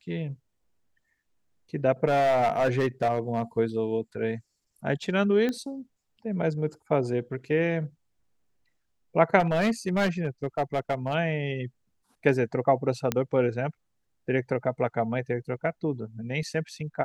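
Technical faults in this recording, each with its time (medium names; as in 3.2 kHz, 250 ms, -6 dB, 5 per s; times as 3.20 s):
2.07–3.43 s: clipped -19 dBFS
5.49 s: pop -17 dBFS
9.39–11.15 s: clipped -20 dBFS
13.12 s: pop -10 dBFS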